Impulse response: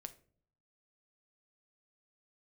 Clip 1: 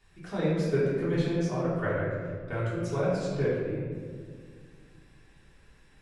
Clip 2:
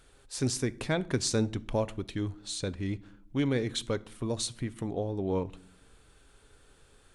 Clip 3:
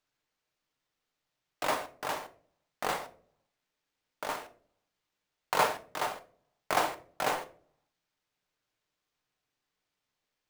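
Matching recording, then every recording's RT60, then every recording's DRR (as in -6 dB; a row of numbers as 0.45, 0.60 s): 3; 1.9 s, not exponential, not exponential; -10.5, 15.0, 8.5 dB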